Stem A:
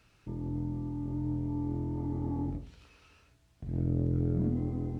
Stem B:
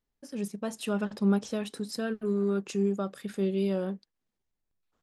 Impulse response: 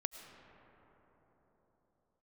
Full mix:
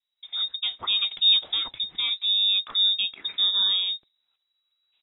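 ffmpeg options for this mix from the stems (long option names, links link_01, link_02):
-filter_complex "[0:a]aeval=exprs='val(0)*pow(10,-29*if(lt(mod(-1.4*n/s,1),2*abs(-1.4)/1000),1-mod(-1.4*n/s,1)/(2*abs(-1.4)/1000),(mod(-1.4*n/s,1)-2*abs(-1.4)/1000)/(1-2*abs(-1.4)/1000))/20)':channel_layout=same,adelay=1500,volume=-12dB[link_01];[1:a]adynamicequalizer=threshold=0.00112:dfrequency=3600:dqfactor=5.2:tfrequency=3600:tqfactor=5.2:attack=5:release=100:ratio=0.375:range=2.5:mode=boostabove:tftype=bell,volume=-1dB,asplit=2[link_02][link_03];[link_03]apad=whole_len=286487[link_04];[link_01][link_04]sidechaincompress=threshold=-46dB:ratio=12:attack=16:release=1040[link_05];[link_05][link_02]amix=inputs=2:normalize=0,dynaudnorm=framelen=120:gausssize=3:maxgain=6dB,lowpass=frequency=3300:width_type=q:width=0.5098,lowpass=frequency=3300:width_type=q:width=0.6013,lowpass=frequency=3300:width_type=q:width=0.9,lowpass=frequency=3300:width_type=q:width=2.563,afreqshift=-3900"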